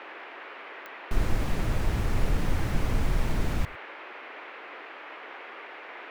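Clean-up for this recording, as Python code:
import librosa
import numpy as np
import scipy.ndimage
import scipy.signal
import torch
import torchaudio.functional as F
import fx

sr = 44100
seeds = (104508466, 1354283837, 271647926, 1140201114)

y = fx.fix_declick_ar(x, sr, threshold=10.0)
y = fx.noise_reduce(y, sr, print_start_s=4.5, print_end_s=5.0, reduce_db=27.0)
y = fx.fix_echo_inverse(y, sr, delay_ms=105, level_db=-23.5)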